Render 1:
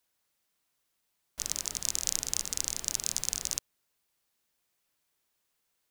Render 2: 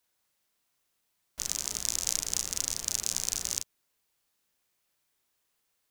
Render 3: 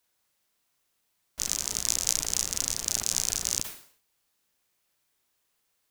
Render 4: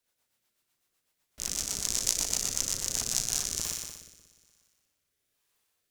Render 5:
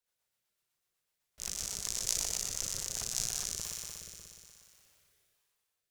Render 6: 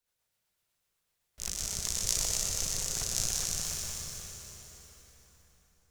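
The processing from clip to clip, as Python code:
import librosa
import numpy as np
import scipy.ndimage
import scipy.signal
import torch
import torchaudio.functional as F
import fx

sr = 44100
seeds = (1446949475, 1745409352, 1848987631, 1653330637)

y1 = fx.room_early_taps(x, sr, ms=(35, 46), db=(-5.5, -17.0))
y2 = fx.sustainer(y1, sr, db_per_s=110.0)
y2 = y2 * 10.0 ** (2.0 / 20.0)
y3 = fx.echo_heads(y2, sr, ms=60, heads='first and second', feedback_pct=66, wet_db=-9)
y3 = fx.rotary_switch(y3, sr, hz=8.0, then_hz=1.1, switch_at_s=2.78)
y3 = y3 * 10.0 ** (-1.0 / 20.0)
y4 = fx.peak_eq(y3, sr, hz=270.0, db=-13.0, octaves=0.32)
y4 = fx.sustainer(y4, sr, db_per_s=22.0)
y4 = y4 * 10.0 ** (-7.5 / 20.0)
y5 = fx.low_shelf(y4, sr, hz=120.0, db=7.5)
y5 = fx.rev_plate(y5, sr, seeds[0], rt60_s=4.1, hf_ratio=0.7, predelay_ms=120, drr_db=3.0)
y5 = y5 * 10.0 ** (2.0 / 20.0)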